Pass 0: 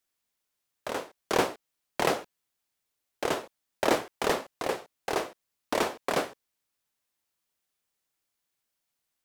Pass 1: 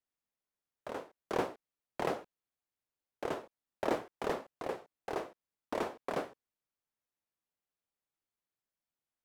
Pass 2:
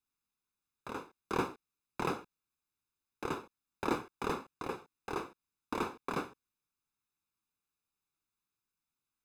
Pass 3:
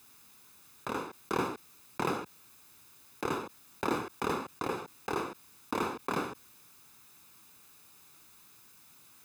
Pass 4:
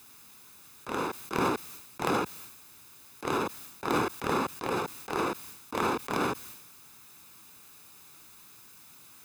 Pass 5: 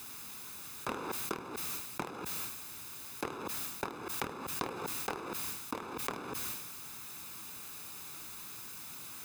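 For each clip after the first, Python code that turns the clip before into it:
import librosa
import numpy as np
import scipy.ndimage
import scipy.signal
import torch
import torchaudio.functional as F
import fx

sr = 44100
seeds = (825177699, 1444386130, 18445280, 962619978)

y1 = fx.high_shelf(x, sr, hz=2200.0, db=-11.0)
y1 = y1 * 10.0 ** (-6.5 / 20.0)
y2 = y1 + 0.77 * np.pad(y1, (int(0.8 * sr / 1000.0), 0))[:len(y1)]
y3 = scipy.signal.sosfilt(scipy.signal.butter(2, 73.0, 'highpass', fs=sr, output='sos'), y2)
y3 = fx.high_shelf(y3, sr, hz=10000.0, db=4.5)
y3 = fx.env_flatten(y3, sr, amount_pct=50)
y4 = fx.transient(y3, sr, attack_db=-12, sustain_db=8)
y4 = y4 * 10.0 ** (5.0 / 20.0)
y5 = fx.over_compress(y4, sr, threshold_db=-39.0, ratio=-1.0)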